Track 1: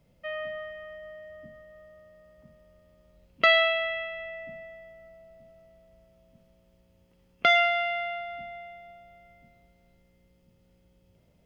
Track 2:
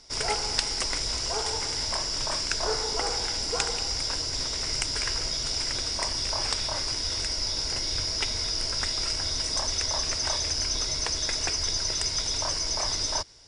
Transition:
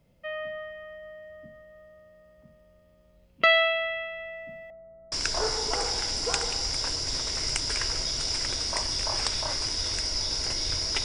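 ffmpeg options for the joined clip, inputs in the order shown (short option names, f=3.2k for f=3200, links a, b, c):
-filter_complex "[0:a]asettb=1/sr,asplit=3[a][b][c];[a]atrim=end=4.704[d];[b]atrim=start=4.7:end=5.12,asetpts=PTS-STARTPTS,afade=t=in:d=0.004:c=qsin,afade=t=out:st=0.416:d=0.004:c=qsin,lowpass=f=1.1k:w=0.5412,lowpass=f=1.1k:w=1.3066[e];[c]atrim=start=5.116[f];[d][e]acrossfade=d=0.004:c1=hsin:c2=qsin[g];[g][f]acrossfade=d=0.004:c1=qsin:c2=hsin,apad=whole_dur=11.04,atrim=end=11.04,atrim=end=5.122[h];[1:a]atrim=start=2.378:end=8.3[i];[h][i]acrossfade=d=0.004:c1=hsin:c2=hsin"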